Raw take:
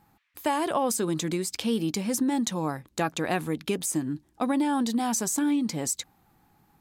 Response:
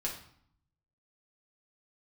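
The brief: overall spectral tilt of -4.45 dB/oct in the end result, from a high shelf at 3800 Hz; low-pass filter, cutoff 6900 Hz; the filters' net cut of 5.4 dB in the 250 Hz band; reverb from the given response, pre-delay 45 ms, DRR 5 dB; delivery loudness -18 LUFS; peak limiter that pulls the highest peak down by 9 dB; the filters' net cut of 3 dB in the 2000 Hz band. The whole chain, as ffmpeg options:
-filter_complex "[0:a]lowpass=6.9k,equalizer=f=250:t=o:g=-6.5,equalizer=f=2k:t=o:g=-3,highshelf=f=3.8k:g=-3,alimiter=limit=-24dB:level=0:latency=1,asplit=2[a][b];[1:a]atrim=start_sample=2205,adelay=45[c];[b][c]afir=irnorm=-1:irlink=0,volume=-7.5dB[d];[a][d]amix=inputs=2:normalize=0,volume=14dB"

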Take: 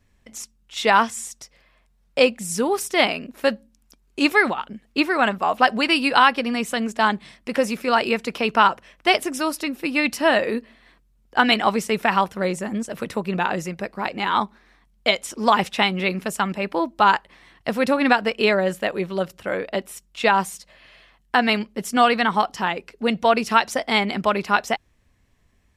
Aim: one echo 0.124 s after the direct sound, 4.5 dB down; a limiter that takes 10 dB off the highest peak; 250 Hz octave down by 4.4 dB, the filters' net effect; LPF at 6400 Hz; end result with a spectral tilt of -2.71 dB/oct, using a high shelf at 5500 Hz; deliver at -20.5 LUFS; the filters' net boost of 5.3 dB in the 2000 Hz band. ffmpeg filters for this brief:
-af "lowpass=6.4k,equalizer=f=250:t=o:g=-5.5,equalizer=f=2k:t=o:g=6,highshelf=f=5.5k:g=7,alimiter=limit=-8.5dB:level=0:latency=1,aecho=1:1:124:0.596,volume=0.5dB"

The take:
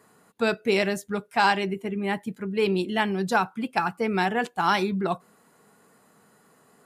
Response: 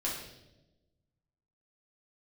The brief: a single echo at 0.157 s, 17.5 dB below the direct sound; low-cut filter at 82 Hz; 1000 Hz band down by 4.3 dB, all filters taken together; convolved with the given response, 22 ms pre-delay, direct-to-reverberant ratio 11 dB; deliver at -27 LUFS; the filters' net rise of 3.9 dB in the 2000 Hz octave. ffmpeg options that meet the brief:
-filter_complex "[0:a]highpass=82,equalizer=f=1k:t=o:g=-8,equalizer=f=2k:t=o:g=8,aecho=1:1:157:0.133,asplit=2[a][b];[1:a]atrim=start_sample=2205,adelay=22[c];[b][c]afir=irnorm=-1:irlink=0,volume=-15.5dB[d];[a][d]amix=inputs=2:normalize=0,volume=-2dB"

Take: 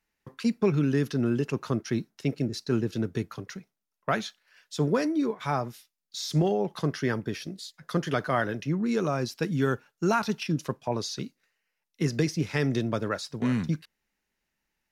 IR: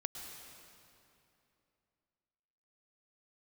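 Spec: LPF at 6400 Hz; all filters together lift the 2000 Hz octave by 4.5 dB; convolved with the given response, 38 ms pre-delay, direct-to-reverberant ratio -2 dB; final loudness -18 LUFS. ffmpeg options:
-filter_complex "[0:a]lowpass=6.4k,equalizer=f=2k:t=o:g=6,asplit=2[a][b];[1:a]atrim=start_sample=2205,adelay=38[c];[b][c]afir=irnorm=-1:irlink=0,volume=2.5dB[d];[a][d]amix=inputs=2:normalize=0,volume=6.5dB"

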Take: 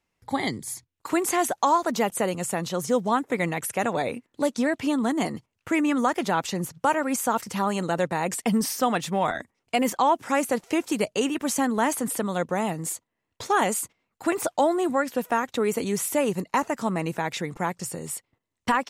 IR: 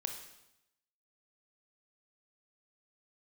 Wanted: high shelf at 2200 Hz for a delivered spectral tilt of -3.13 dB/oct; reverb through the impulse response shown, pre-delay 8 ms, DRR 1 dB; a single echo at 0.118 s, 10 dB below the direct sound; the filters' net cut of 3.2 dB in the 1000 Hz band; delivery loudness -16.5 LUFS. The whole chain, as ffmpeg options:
-filter_complex "[0:a]equalizer=f=1k:t=o:g=-5.5,highshelf=f=2.2k:g=7.5,aecho=1:1:118:0.316,asplit=2[a][b];[1:a]atrim=start_sample=2205,adelay=8[c];[b][c]afir=irnorm=-1:irlink=0,volume=-1dB[d];[a][d]amix=inputs=2:normalize=0,volume=5.5dB"

